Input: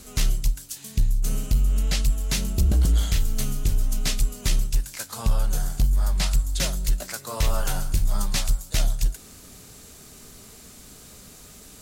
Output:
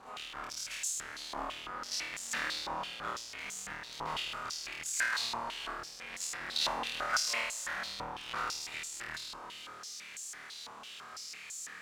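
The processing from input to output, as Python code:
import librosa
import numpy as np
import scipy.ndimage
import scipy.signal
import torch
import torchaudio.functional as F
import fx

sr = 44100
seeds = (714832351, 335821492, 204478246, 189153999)

p1 = fx.halfwave_hold(x, sr)
p2 = fx.over_compress(p1, sr, threshold_db=-19.0, ratio=-0.5)
p3 = p2 + fx.room_flutter(p2, sr, wall_m=4.4, rt60_s=1.0, dry=0)
p4 = fx.rev_gated(p3, sr, seeds[0], gate_ms=500, shape='rising', drr_db=9.5)
y = fx.filter_held_bandpass(p4, sr, hz=6.0, low_hz=980.0, high_hz=7100.0)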